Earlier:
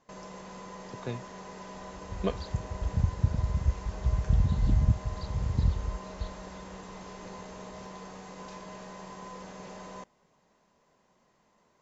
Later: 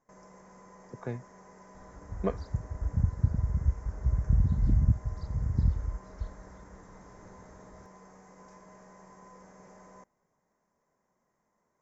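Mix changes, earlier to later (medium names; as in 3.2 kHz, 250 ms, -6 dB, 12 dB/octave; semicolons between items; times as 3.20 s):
first sound -9.0 dB; master: add high-order bell 3.4 kHz -15.5 dB 1 oct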